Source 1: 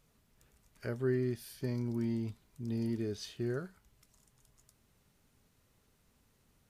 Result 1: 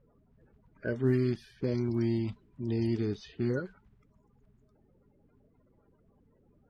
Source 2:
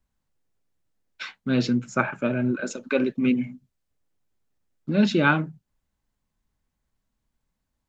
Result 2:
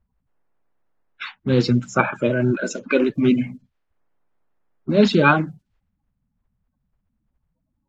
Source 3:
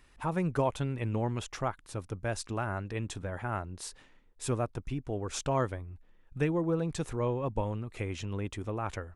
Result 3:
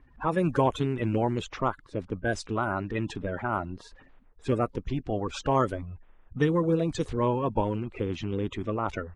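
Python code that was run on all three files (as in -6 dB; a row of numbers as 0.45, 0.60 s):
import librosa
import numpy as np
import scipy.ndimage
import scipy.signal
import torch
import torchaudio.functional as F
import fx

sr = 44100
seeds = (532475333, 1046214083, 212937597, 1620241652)

y = fx.spec_quant(x, sr, step_db=30)
y = fx.env_lowpass(y, sr, base_hz=1300.0, full_db=-26.0)
y = y * 10.0 ** (5.5 / 20.0)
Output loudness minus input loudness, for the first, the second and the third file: +5.0, +4.5, +5.0 LU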